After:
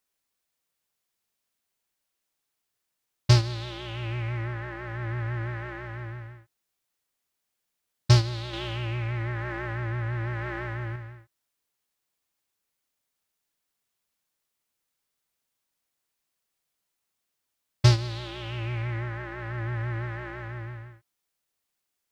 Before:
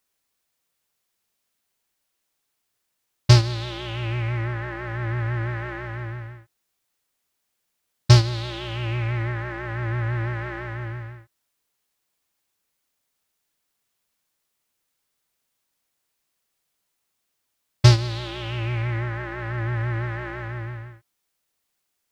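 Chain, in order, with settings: 8.53–10.96 s: level flattener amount 50%; trim -5 dB

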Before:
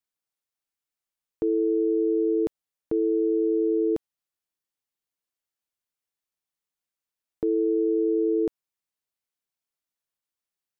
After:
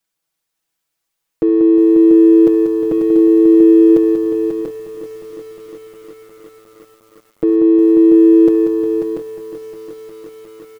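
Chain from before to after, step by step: comb 6.1 ms, depth 96%; in parallel at -10 dB: saturation -28.5 dBFS, distortion -7 dB; on the sum: multi-tap echo 69/188/540/688 ms -16.5/-7.5/-7/-6 dB; bit-crushed delay 357 ms, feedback 80%, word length 8-bit, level -11.5 dB; trim +6.5 dB

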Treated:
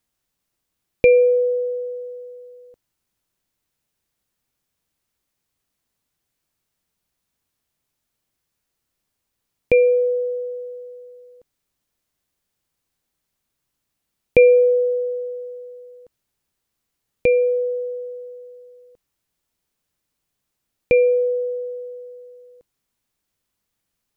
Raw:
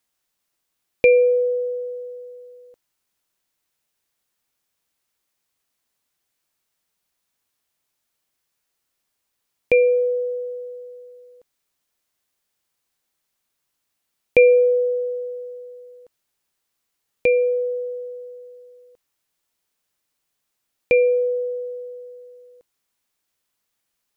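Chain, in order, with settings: bass shelf 300 Hz +11.5 dB; trim -2 dB

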